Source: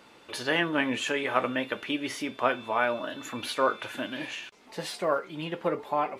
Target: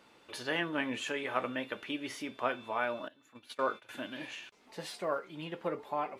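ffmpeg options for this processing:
ffmpeg -i in.wav -filter_complex "[0:a]asettb=1/sr,asplit=3[link_01][link_02][link_03];[link_01]atrim=end=3.084[link_04];[link_02]atrim=start=3.08:end=3.89,asetpts=PTS-STARTPTS,afade=type=in:duration=0.004:curve=qsin,afade=type=out:start_time=0.806:duration=0.004:curve=qsin,agate=range=-18dB:threshold=-32dB:ratio=16:detection=peak[link_05];[link_03]atrim=start=3.886[link_06];[link_04][link_05]acrossfade=duration=0.004:curve1=hsin:curve2=qsin[link_07];[link_07][link_06]acrossfade=duration=0.004:curve1=qsin:curve2=hsin,volume=-7dB" out.wav

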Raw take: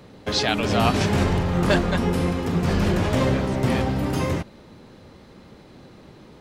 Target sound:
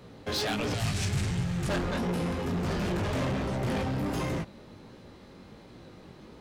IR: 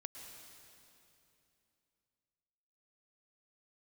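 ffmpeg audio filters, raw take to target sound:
-filter_complex "[0:a]flanger=delay=16.5:depth=5.7:speed=1.4,asoftclip=type=tanh:threshold=-26dB,asettb=1/sr,asplit=3[link_01][link_02][link_03];[link_01]atrim=end=0.744[link_04];[link_02]atrim=start=0.74:end=1.69,asetpts=PTS-STARTPTS,afade=type=in:duration=0.004:curve=qsin,afade=type=out:start_time=0.946:duration=0.004:curve=qsin,equalizer=frequency=125:width_type=o:width=1:gain=7,equalizer=frequency=250:width_type=o:width=1:gain=-7,equalizer=frequency=500:width_type=o:width=1:gain=-8,equalizer=frequency=1000:width_type=o:width=1:gain=-8,equalizer=frequency=8000:width_type=o:width=1:gain=8[link_05];[link_03]atrim=start=1.686[link_06];[link_04][link_05]acrossfade=duration=0.004:curve1=hsin:curve2=qsin[link_07];[link_07][link_06]acrossfade=duration=0.004:curve1=qsin:curve2=hsin"

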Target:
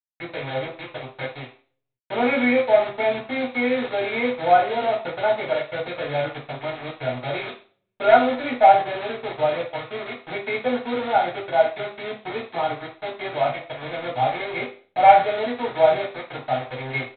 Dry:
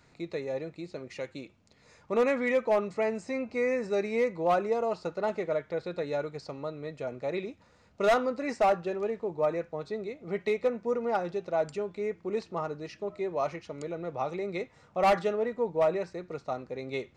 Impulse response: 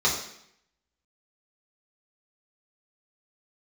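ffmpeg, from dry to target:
-filter_complex "[0:a]aecho=1:1:1.3:0.56,aresample=8000,acrusher=bits=5:mix=0:aa=0.000001,aresample=44100[link_01];[1:a]atrim=start_sample=2205,asetrate=79380,aresample=44100[link_02];[link_01][link_02]afir=irnorm=-1:irlink=0,volume=-2.5dB"

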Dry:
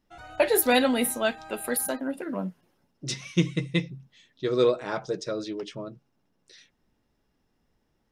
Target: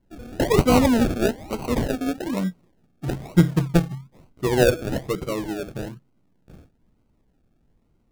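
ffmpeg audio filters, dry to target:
ffmpeg -i in.wav -af "acrusher=samples=35:mix=1:aa=0.000001:lfo=1:lforange=21:lforate=1.1,lowshelf=frequency=380:gain=10" out.wav

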